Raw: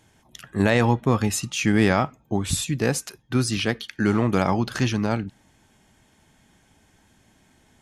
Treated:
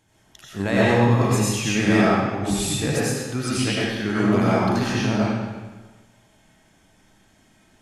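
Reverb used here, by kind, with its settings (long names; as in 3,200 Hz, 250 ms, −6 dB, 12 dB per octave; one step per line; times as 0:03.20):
comb and all-pass reverb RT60 1.3 s, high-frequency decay 0.9×, pre-delay 55 ms, DRR −7.5 dB
level −6 dB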